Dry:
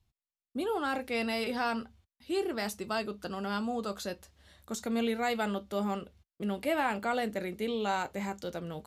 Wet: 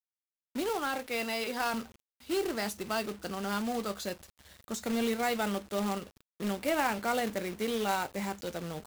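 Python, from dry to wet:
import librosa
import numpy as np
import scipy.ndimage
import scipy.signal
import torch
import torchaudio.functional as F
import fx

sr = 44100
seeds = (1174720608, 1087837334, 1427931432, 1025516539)

y = fx.highpass(x, sr, hz=350.0, slope=6, at=(0.69, 1.74))
y = fx.quant_companded(y, sr, bits=4)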